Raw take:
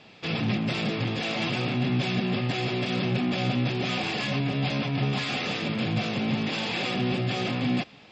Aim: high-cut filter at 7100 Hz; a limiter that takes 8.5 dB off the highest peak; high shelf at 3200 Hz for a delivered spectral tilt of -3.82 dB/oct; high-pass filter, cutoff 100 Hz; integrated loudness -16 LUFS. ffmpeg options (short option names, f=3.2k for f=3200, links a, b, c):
-af "highpass=100,lowpass=7.1k,highshelf=f=3.2k:g=3,volume=14.5dB,alimiter=limit=-7.5dB:level=0:latency=1"